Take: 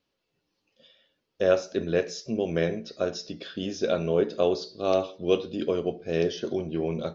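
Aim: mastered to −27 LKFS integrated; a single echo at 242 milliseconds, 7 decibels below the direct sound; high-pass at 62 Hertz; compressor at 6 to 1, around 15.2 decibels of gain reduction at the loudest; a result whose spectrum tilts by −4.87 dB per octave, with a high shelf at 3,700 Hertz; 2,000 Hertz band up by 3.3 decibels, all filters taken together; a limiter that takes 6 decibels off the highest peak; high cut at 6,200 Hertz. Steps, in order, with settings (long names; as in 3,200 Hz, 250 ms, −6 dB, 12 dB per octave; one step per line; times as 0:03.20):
high-pass filter 62 Hz
low-pass filter 6,200 Hz
parametric band 2,000 Hz +6 dB
high-shelf EQ 3,700 Hz −5.5 dB
downward compressor 6 to 1, threshold −34 dBFS
brickwall limiter −27.5 dBFS
single-tap delay 242 ms −7 dB
level +12.5 dB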